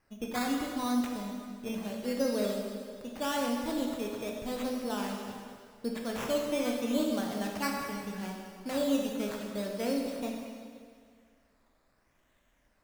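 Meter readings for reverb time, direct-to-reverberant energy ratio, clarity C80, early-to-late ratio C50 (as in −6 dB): 2.0 s, 0.0 dB, 3.5 dB, 2.0 dB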